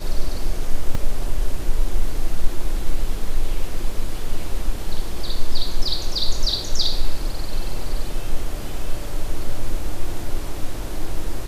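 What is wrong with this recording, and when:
0.95 gap 2.8 ms

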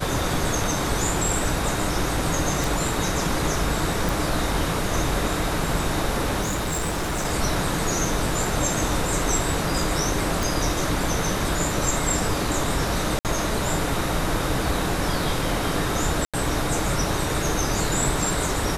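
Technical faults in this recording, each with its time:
2.64 pop
4.09 pop
6.41–7.26 clipped -22 dBFS
10.43 pop
13.19–13.25 gap 58 ms
16.25–16.34 gap 86 ms

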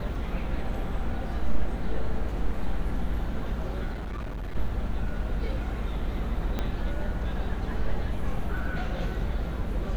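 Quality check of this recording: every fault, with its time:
3.92–4.56 clipped -30.5 dBFS
6.59 pop -16 dBFS

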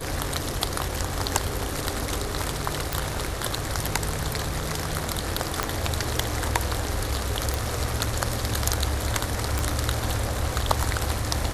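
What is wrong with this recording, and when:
2.93 pop
5.63 pop -7 dBFS
7.54 pop
9.59 pop

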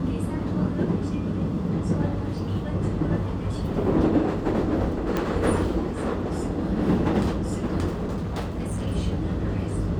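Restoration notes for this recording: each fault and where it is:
5.17 pop -13 dBFS
7.93–8.88 clipped -24.5 dBFS

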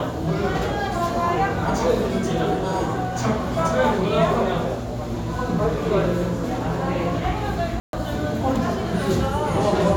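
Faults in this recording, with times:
7.8–7.93 gap 0.132 s

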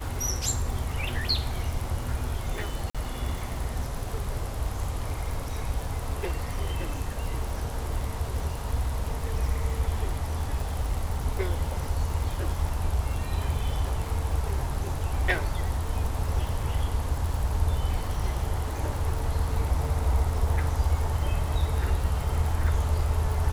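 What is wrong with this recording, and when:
crackle 160/s -34 dBFS
2.9–2.95 gap 46 ms

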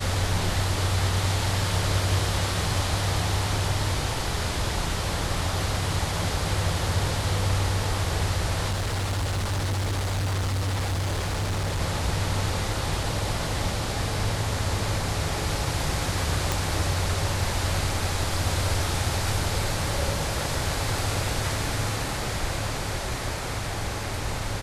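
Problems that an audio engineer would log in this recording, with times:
8.7–11.82 clipped -23.5 dBFS
16.52 pop

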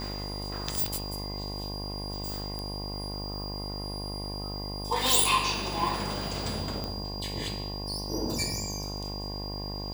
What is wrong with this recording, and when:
buzz 50 Hz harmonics 22 -37 dBFS
tone 4800 Hz -38 dBFS
2.59 pop -21 dBFS
6.84 pop -19 dBFS

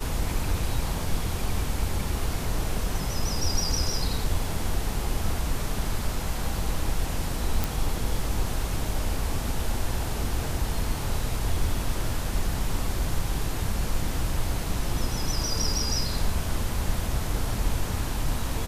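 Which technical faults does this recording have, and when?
7.64 pop

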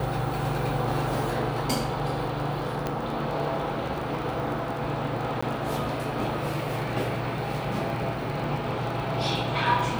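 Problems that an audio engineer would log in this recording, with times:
crackle 23/s -32 dBFS
2.87 pop -14 dBFS
5.41–5.42 gap

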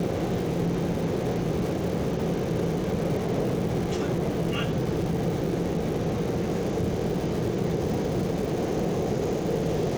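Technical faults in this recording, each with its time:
crackle 370/s -33 dBFS

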